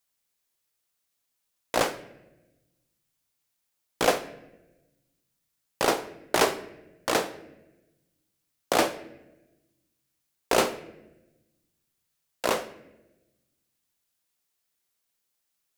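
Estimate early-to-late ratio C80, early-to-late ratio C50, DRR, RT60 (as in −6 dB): 17.0 dB, 14.0 dB, 11.5 dB, 1.0 s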